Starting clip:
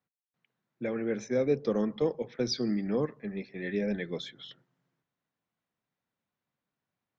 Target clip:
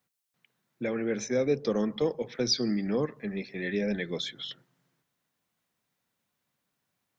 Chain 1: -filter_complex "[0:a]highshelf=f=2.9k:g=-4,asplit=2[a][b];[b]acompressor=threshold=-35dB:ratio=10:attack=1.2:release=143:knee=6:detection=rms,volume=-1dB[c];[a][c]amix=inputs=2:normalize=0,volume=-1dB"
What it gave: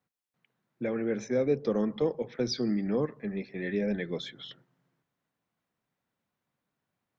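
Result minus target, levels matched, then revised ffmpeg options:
8000 Hz band -8.0 dB
-filter_complex "[0:a]highshelf=f=2.9k:g=8,asplit=2[a][b];[b]acompressor=threshold=-35dB:ratio=10:attack=1.2:release=143:knee=6:detection=rms,volume=-1dB[c];[a][c]amix=inputs=2:normalize=0,volume=-1dB"

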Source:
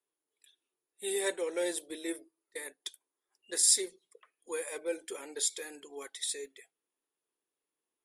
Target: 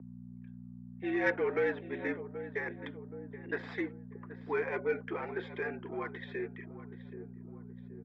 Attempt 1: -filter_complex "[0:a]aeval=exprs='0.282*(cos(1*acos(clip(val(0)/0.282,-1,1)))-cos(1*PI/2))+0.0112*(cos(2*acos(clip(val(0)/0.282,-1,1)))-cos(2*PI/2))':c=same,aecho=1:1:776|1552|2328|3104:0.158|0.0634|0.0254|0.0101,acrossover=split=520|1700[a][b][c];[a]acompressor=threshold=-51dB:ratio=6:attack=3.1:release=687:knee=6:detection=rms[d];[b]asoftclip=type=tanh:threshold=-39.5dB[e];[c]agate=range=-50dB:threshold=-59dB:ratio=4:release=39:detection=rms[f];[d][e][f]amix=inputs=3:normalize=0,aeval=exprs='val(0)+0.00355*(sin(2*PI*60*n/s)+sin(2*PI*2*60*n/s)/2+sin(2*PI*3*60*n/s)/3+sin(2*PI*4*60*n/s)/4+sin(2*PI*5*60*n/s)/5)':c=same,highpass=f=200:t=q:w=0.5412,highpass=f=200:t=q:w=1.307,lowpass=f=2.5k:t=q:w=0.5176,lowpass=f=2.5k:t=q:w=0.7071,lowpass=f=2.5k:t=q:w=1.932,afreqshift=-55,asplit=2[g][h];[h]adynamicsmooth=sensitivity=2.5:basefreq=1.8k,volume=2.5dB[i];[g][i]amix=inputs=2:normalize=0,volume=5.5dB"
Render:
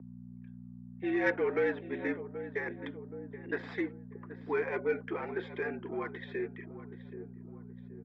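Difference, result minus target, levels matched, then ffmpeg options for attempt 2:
compressor: peak gain reduction -6 dB
-filter_complex "[0:a]aeval=exprs='0.282*(cos(1*acos(clip(val(0)/0.282,-1,1)))-cos(1*PI/2))+0.0112*(cos(2*acos(clip(val(0)/0.282,-1,1)))-cos(2*PI/2))':c=same,aecho=1:1:776|1552|2328|3104:0.158|0.0634|0.0254|0.0101,acrossover=split=520|1700[a][b][c];[a]acompressor=threshold=-58.5dB:ratio=6:attack=3.1:release=687:knee=6:detection=rms[d];[b]asoftclip=type=tanh:threshold=-39.5dB[e];[c]agate=range=-50dB:threshold=-59dB:ratio=4:release=39:detection=rms[f];[d][e][f]amix=inputs=3:normalize=0,aeval=exprs='val(0)+0.00355*(sin(2*PI*60*n/s)+sin(2*PI*2*60*n/s)/2+sin(2*PI*3*60*n/s)/3+sin(2*PI*4*60*n/s)/4+sin(2*PI*5*60*n/s)/5)':c=same,highpass=f=200:t=q:w=0.5412,highpass=f=200:t=q:w=1.307,lowpass=f=2.5k:t=q:w=0.5176,lowpass=f=2.5k:t=q:w=0.7071,lowpass=f=2.5k:t=q:w=1.932,afreqshift=-55,asplit=2[g][h];[h]adynamicsmooth=sensitivity=2.5:basefreq=1.8k,volume=2.5dB[i];[g][i]amix=inputs=2:normalize=0,volume=5.5dB"

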